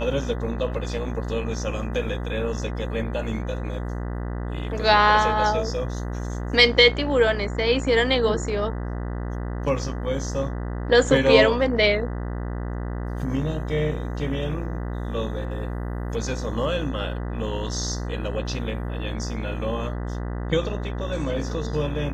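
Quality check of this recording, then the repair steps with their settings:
buzz 60 Hz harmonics 33 -29 dBFS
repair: de-hum 60 Hz, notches 33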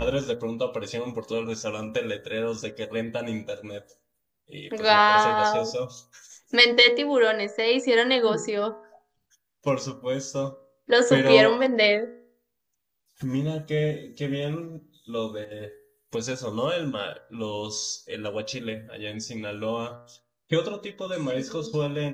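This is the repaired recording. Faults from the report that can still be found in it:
nothing left

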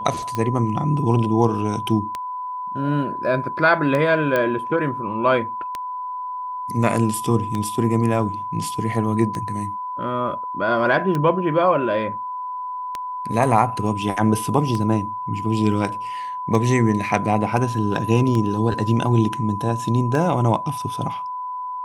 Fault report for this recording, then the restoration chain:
tick 33 1/3 rpm -12 dBFS
whine 1 kHz -26 dBFS
4.36 s: pop -9 dBFS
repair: de-click; band-stop 1 kHz, Q 30

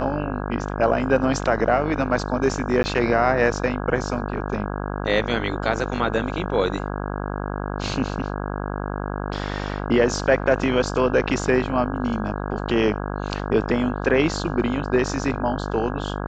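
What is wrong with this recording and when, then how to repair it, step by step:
buzz 50 Hz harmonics 33 -28 dBFS
2.83–2.84 s: dropout 10 ms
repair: de-hum 50 Hz, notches 33; interpolate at 2.83 s, 10 ms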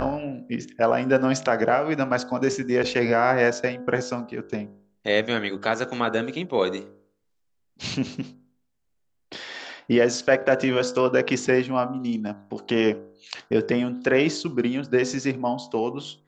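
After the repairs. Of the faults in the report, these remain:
nothing left

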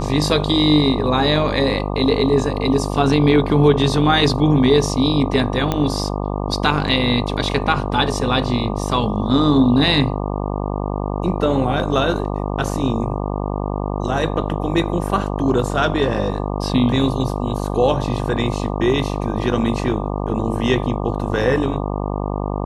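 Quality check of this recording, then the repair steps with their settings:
buzz 50 Hz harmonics 24 -23 dBFS
5.72 s: pop -6 dBFS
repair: de-click; de-hum 50 Hz, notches 24

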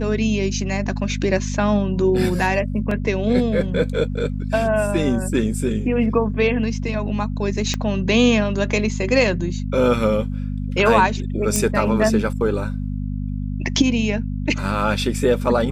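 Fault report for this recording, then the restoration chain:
hum 50 Hz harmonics 5 -25 dBFS
2.91 s: dropout 3.5 ms
7.74 s: pop -9 dBFS
11.56 s: pop -5 dBFS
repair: de-click; de-hum 50 Hz, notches 5; interpolate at 2.91 s, 3.5 ms

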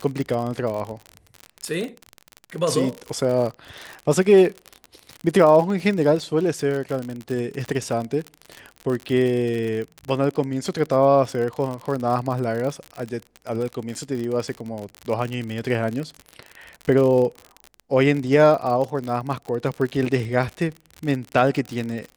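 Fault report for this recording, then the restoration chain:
crackle 50 per s -26 dBFS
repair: de-click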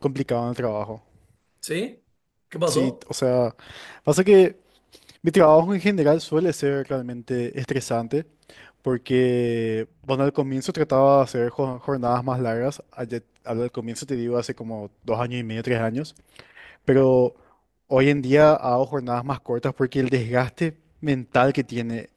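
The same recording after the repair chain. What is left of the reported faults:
nothing left

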